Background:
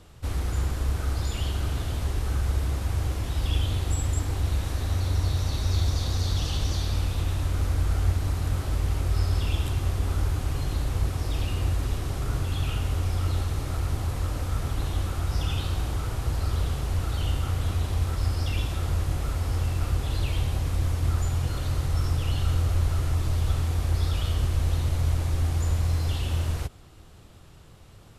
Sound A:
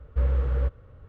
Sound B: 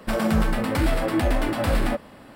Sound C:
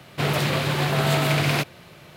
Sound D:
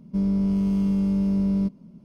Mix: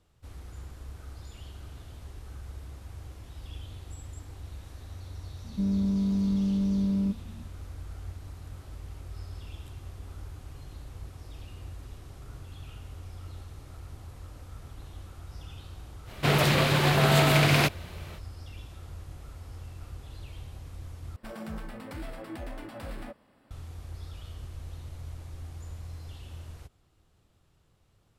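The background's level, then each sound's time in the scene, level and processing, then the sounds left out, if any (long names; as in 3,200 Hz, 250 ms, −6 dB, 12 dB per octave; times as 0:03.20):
background −16.5 dB
0:05.44: mix in D −7 dB + parametric band 230 Hz +9.5 dB 0.29 octaves
0:16.05: mix in C, fades 0.05 s
0:21.16: overwrite with B −17.5 dB
not used: A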